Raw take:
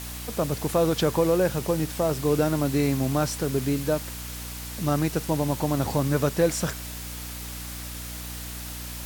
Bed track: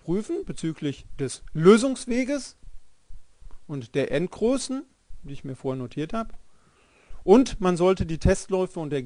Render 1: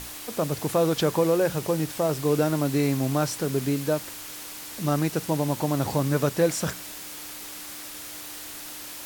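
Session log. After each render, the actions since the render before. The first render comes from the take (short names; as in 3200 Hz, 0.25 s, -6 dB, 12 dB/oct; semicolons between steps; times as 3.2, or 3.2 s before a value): notches 60/120/180/240 Hz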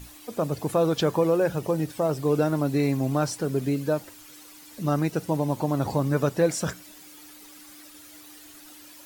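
denoiser 12 dB, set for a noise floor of -39 dBFS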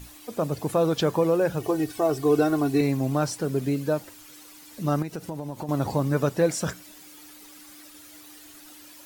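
1.6–2.81 comb 2.7 ms, depth 79%; 5.02–5.69 compressor 4:1, threshold -30 dBFS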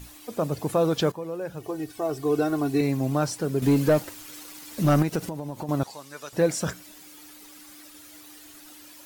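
1.12–3.1 fade in linear, from -14 dB; 3.62–5.29 sample leveller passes 2; 5.83–6.33 band-pass 5900 Hz, Q 0.57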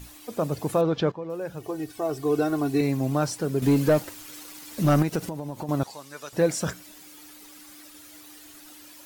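0.81–1.3 air absorption 190 m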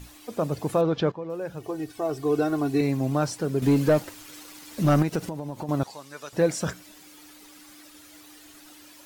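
high shelf 9100 Hz -6 dB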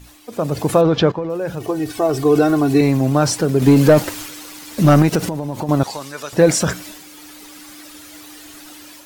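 AGC gain up to 10 dB; transient shaper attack +2 dB, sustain +6 dB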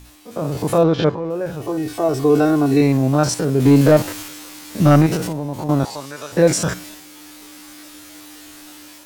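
stepped spectrum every 50 ms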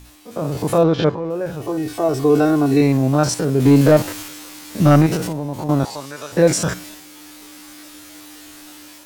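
nothing audible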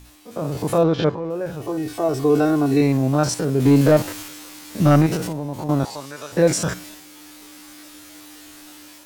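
gain -2.5 dB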